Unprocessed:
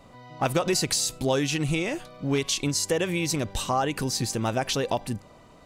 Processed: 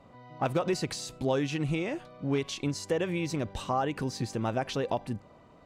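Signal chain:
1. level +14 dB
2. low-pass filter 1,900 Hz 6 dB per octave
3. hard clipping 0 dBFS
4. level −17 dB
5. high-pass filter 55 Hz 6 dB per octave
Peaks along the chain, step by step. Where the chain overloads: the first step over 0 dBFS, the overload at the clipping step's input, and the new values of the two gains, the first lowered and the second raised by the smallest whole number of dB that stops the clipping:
+5.0, +4.0, 0.0, −17.0, −16.5 dBFS
step 1, 4.0 dB
step 1 +10 dB, step 4 −13 dB

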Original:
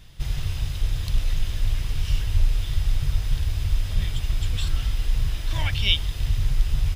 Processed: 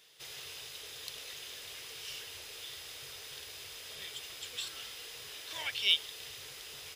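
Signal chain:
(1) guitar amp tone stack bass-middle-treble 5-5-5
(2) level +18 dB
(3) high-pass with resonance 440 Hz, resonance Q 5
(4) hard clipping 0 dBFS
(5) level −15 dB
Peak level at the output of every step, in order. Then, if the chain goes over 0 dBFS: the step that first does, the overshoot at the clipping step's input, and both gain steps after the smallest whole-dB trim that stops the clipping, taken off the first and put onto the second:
−14.5, +3.5, +3.0, 0.0, −15.0 dBFS
step 2, 3.0 dB
step 2 +15 dB, step 5 −12 dB

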